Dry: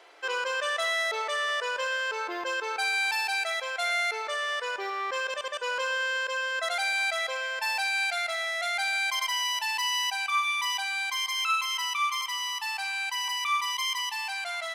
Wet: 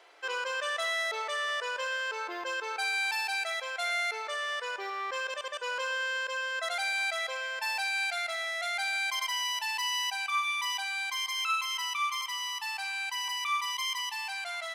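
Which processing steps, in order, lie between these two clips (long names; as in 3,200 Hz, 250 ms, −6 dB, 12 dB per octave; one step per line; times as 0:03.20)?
low-shelf EQ 270 Hz −6 dB
level −3 dB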